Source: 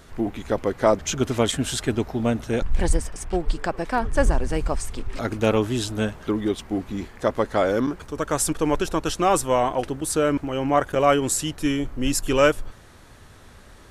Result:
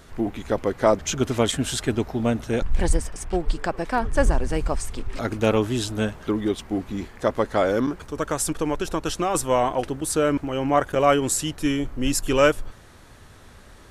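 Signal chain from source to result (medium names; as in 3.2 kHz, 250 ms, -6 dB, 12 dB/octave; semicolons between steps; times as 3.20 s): 8.27–9.35 s: compression, threshold -20 dBFS, peak gain reduction 6 dB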